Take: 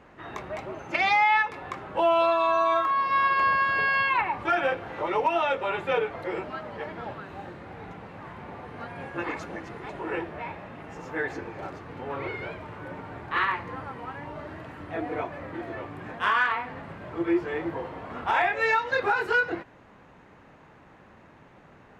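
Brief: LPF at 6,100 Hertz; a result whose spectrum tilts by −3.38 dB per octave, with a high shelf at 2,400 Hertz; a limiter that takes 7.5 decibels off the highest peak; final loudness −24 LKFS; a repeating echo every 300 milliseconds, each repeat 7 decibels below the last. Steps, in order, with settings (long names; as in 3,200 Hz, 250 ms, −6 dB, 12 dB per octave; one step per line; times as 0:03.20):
low-pass filter 6,100 Hz
high-shelf EQ 2,400 Hz −5 dB
brickwall limiter −21 dBFS
repeating echo 300 ms, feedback 45%, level −7 dB
level +7 dB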